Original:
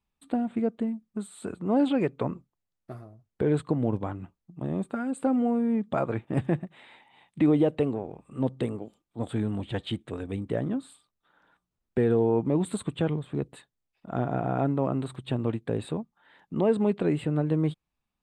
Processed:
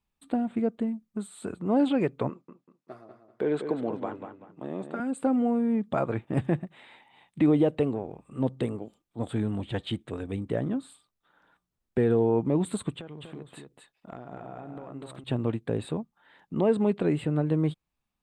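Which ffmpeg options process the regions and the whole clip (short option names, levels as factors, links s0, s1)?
-filter_complex "[0:a]asettb=1/sr,asplit=3[s0][s1][s2];[s0]atrim=end=2.294[s3];[s1]atrim=start=2.29:end=5,asetpts=PTS-STARTPTS,afade=t=in:d=0.004:c=qsin,afade=t=out:st=2.706:d=0.004:c=qsin,highpass=300,lowpass=6600,asplit=2[s4][s5];[s5]adelay=193,lowpass=f=4500:p=1,volume=0.422,asplit=2[s6][s7];[s7]adelay=193,lowpass=f=4500:p=1,volume=0.3,asplit=2[s8][s9];[s9]adelay=193,lowpass=f=4500:p=1,volume=0.3,asplit=2[s10][s11];[s11]adelay=193,lowpass=f=4500:p=1,volume=0.3[s12];[s4][s6][s8][s10][s12]amix=inputs=5:normalize=0,atrim=end_sample=119511[s13];[s2]atrim=start=4.996[s14];[s3][s13]acrossfade=d=0.004:c1=hsin:c2=qsin[s15];[s15][s14]acrossfade=d=0.004:c1=qsin:c2=hsin,asettb=1/sr,asplit=3[s16][s17][s18];[s16]atrim=end=12.964[s19];[s17]atrim=start=12.96:end=15.24,asetpts=PTS-STARTPTS,afade=t=in:d=0.004:c=qsin,afade=t=out:st=2.276:d=0.004:c=qsin,lowshelf=f=200:g=-9,acompressor=threshold=0.0158:ratio=16:attack=3.2:release=140:knee=1:detection=peak,aecho=1:1:244:0.562,atrim=end_sample=100548[s20];[s18]atrim=start=15.236[s21];[s19][s20]acrossfade=d=0.004:c1=hsin:c2=qsin[s22];[s22][s21]acrossfade=d=0.004:c1=qsin:c2=hsin"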